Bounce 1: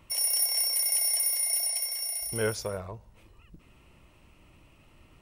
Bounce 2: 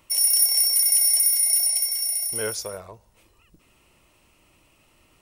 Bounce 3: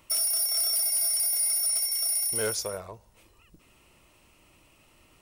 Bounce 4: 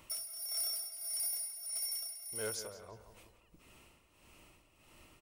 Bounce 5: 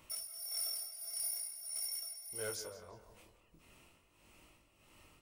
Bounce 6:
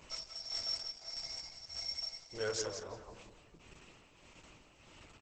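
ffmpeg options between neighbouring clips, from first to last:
-af "bass=f=250:g=-7,treble=f=4000:g=8"
-af "alimiter=limit=0.188:level=0:latency=1:release=356,asoftclip=type=hard:threshold=0.075"
-filter_complex "[0:a]alimiter=level_in=2.51:limit=0.0631:level=0:latency=1:release=109,volume=0.398,tremolo=f=1.6:d=0.75,asplit=2[s0][s1];[s1]adelay=174,lowpass=f=4000:p=1,volume=0.282,asplit=2[s2][s3];[s3]adelay=174,lowpass=f=4000:p=1,volume=0.48,asplit=2[s4][s5];[s5]adelay=174,lowpass=f=4000:p=1,volume=0.48,asplit=2[s6][s7];[s7]adelay=174,lowpass=f=4000:p=1,volume=0.48,asplit=2[s8][s9];[s9]adelay=174,lowpass=f=4000:p=1,volume=0.48[s10];[s0][s2][s4][s6][s8][s10]amix=inputs=6:normalize=0"
-af "flanger=delay=19.5:depth=5.7:speed=0.45,volume=1.12"
-filter_complex "[0:a]aeval=exprs='if(lt(val(0),0),0.708*val(0),val(0))':c=same,asplit=2[s0][s1];[s1]adelay=180.8,volume=0.398,highshelf=f=4000:g=-4.07[s2];[s0][s2]amix=inputs=2:normalize=0,volume=2.51" -ar 48000 -c:a libopus -b:a 10k

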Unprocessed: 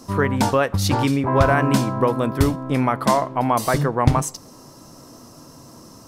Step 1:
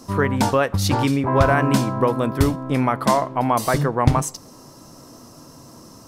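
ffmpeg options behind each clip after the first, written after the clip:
-af anull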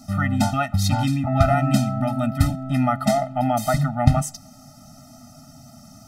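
-af "afftfilt=real='re*eq(mod(floor(b*sr/1024/300),2),0)':imag='im*eq(mod(floor(b*sr/1024/300),2),0)':win_size=1024:overlap=0.75,volume=1.12"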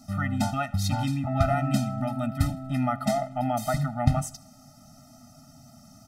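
-af "aecho=1:1:79|158|237:0.0794|0.0397|0.0199,volume=0.501"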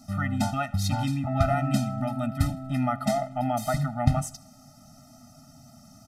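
-af "aresample=32000,aresample=44100"

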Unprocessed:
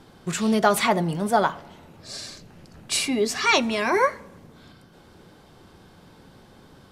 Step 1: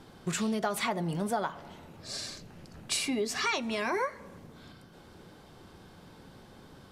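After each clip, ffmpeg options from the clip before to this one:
-af "acompressor=threshold=0.0501:ratio=5,volume=0.794"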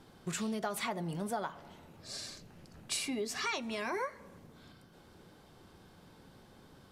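-af "highshelf=f=10000:g=4,volume=0.531"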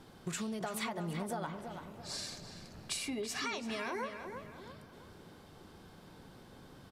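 -filter_complex "[0:a]acompressor=threshold=0.0141:ratio=6,asplit=2[s0][s1];[s1]adelay=335,lowpass=f=3000:p=1,volume=0.447,asplit=2[s2][s3];[s3]adelay=335,lowpass=f=3000:p=1,volume=0.43,asplit=2[s4][s5];[s5]adelay=335,lowpass=f=3000:p=1,volume=0.43,asplit=2[s6][s7];[s7]adelay=335,lowpass=f=3000:p=1,volume=0.43,asplit=2[s8][s9];[s9]adelay=335,lowpass=f=3000:p=1,volume=0.43[s10];[s0][s2][s4][s6][s8][s10]amix=inputs=6:normalize=0,volume=1.26"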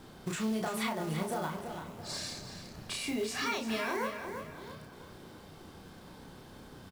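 -filter_complex "[0:a]acrossover=split=3500[s0][s1];[s0]acrusher=bits=4:mode=log:mix=0:aa=0.000001[s2];[s1]alimiter=level_in=3.76:limit=0.0631:level=0:latency=1:release=199,volume=0.266[s3];[s2][s3]amix=inputs=2:normalize=0,asplit=2[s4][s5];[s5]adelay=32,volume=0.708[s6];[s4][s6]amix=inputs=2:normalize=0,volume=1.33"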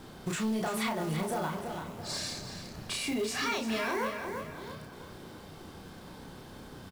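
-af "asoftclip=type=tanh:threshold=0.0422,volume=1.5"

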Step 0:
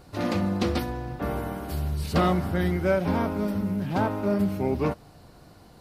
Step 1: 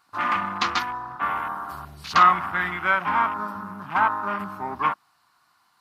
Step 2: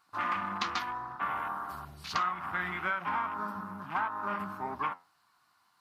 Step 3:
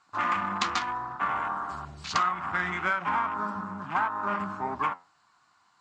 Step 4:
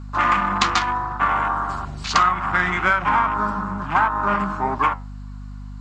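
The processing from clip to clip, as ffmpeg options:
-af "highpass=f=350:p=1,afwtdn=0.01,lowshelf=f=750:t=q:w=3:g=-13,volume=2.66"
-af "acompressor=threshold=0.0708:ratio=6,flanger=delay=4.4:depth=7.1:regen=78:speed=1.7:shape=sinusoidal,volume=0.891"
-filter_complex "[0:a]acrossover=split=590|1000[s0][s1][s2];[s2]adynamicsmooth=sensitivity=2:basefreq=4500[s3];[s0][s1][s3]amix=inputs=3:normalize=0,lowpass=f=7400:t=q:w=6.1,volume=1.78"
-af "aeval=exprs='val(0)+0.00794*(sin(2*PI*50*n/s)+sin(2*PI*2*50*n/s)/2+sin(2*PI*3*50*n/s)/3+sin(2*PI*4*50*n/s)/4+sin(2*PI*5*50*n/s)/5)':c=same,volume=2.82"

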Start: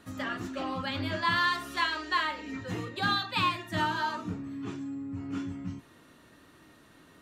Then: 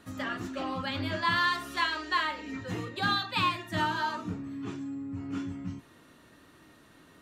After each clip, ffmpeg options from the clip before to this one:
-af anull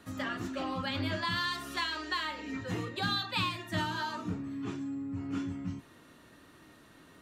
-filter_complex "[0:a]acrossover=split=260|3000[s0][s1][s2];[s1]acompressor=threshold=0.0224:ratio=6[s3];[s0][s3][s2]amix=inputs=3:normalize=0"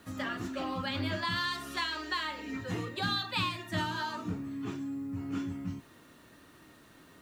-af "acrusher=bits=10:mix=0:aa=0.000001"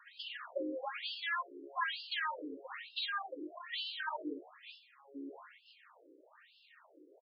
-filter_complex "[0:a]asplit=6[s0][s1][s2][s3][s4][s5];[s1]adelay=140,afreqshift=-59,volume=0.0794[s6];[s2]adelay=280,afreqshift=-118,volume=0.0507[s7];[s3]adelay=420,afreqshift=-177,volume=0.0324[s8];[s4]adelay=560,afreqshift=-236,volume=0.0209[s9];[s5]adelay=700,afreqshift=-295,volume=0.0133[s10];[s0][s6][s7][s8][s9][s10]amix=inputs=6:normalize=0,afftfilt=real='re*between(b*sr/1024,370*pow(3800/370,0.5+0.5*sin(2*PI*1.1*pts/sr))/1.41,370*pow(3800/370,0.5+0.5*sin(2*PI*1.1*pts/sr))*1.41)':imag='im*between(b*sr/1024,370*pow(3800/370,0.5+0.5*sin(2*PI*1.1*pts/sr))/1.41,370*pow(3800/370,0.5+0.5*sin(2*PI*1.1*pts/sr))*1.41)':win_size=1024:overlap=0.75,volume=1.33"

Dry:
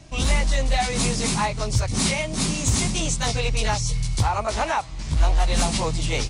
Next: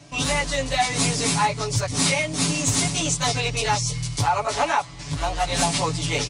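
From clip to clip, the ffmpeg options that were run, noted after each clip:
-af "highpass=60,lowshelf=f=130:g=-7.5,aecho=1:1:7:0.87"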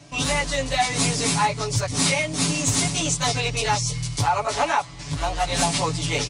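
-af anull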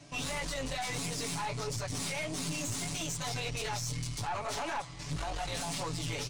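-af "alimiter=limit=0.106:level=0:latency=1:release=41,flanger=delay=2.4:depth=8.2:regen=72:speed=1.7:shape=triangular,aeval=exprs='(tanh(31.6*val(0)+0.45)-tanh(0.45))/31.6':c=same"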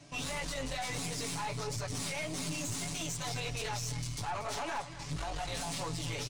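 -af "aecho=1:1:234:0.2,volume=0.841"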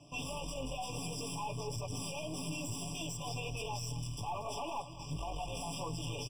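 -filter_complex "[0:a]asplit=2[s0][s1];[s1]acrusher=bits=4:mode=log:mix=0:aa=0.000001,volume=0.398[s2];[s0][s2]amix=inputs=2:normalize=0,afftfilt=real='re*eq(mod(floor(b*sr/1024/1200),2),0)':imag='im*eq(mod(floor(b*sr/1024/1200),2),0)':win_size=1024:overlap=0.75,volume=0.596"

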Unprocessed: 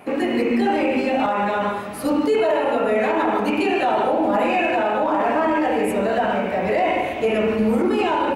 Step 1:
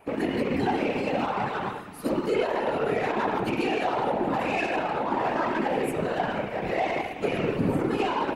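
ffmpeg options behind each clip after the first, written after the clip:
-af "bandreject=f=620:w=12,aeval=exprs='0.355*(cos(1*acos(clip(val(0)/0.355,-1,1)))-cos(1*PI/2))+0.02*(cos(7*acos(clip(val(0)/0.355,-1,1)))-cos(7*PI/2))':c=same,afftfilt=real='hypot(re,im)*cos(2*PI*random(0))':imag='hypot(re,im)*sin(2*PI*random(1))':win_size=512:overlap=0.75"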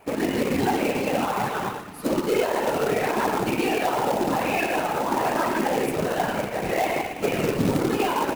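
-af "acrusher=bits=3:mode=log:mix=0:aa=0.000001,volume=1.33"

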